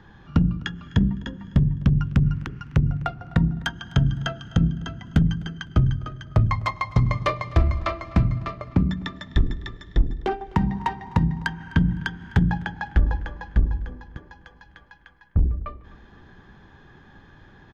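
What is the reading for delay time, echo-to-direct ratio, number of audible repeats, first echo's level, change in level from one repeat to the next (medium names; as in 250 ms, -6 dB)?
254 ms, -22.0 dB, 2, -22.5 dB, -8.5 dB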